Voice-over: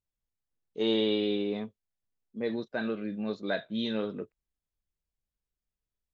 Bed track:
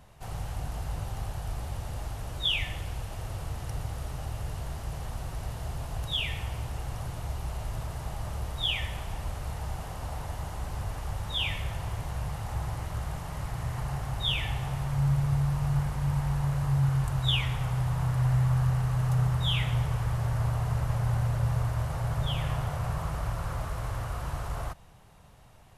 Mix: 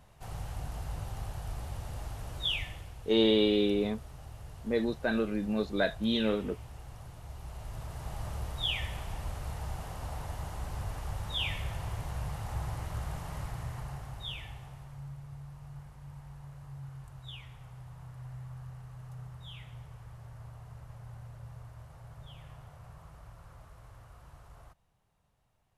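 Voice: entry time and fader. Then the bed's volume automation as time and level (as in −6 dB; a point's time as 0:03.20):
2.30 s, +2.5 dB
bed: 0:02.52 −4 dB
0:02.95 −11.5 dB
0:07.22 −11.5 dB
0:08.19 −3 dB
0:13.36 −3 dB
0:15.17 −19.5 dB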